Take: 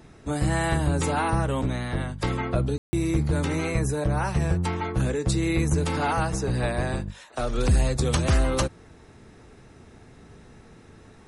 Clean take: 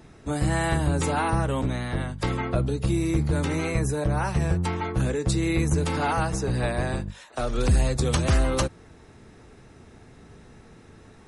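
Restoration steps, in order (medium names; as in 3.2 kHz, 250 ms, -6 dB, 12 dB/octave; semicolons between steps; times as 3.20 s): room tone fill 2.78–2.93 s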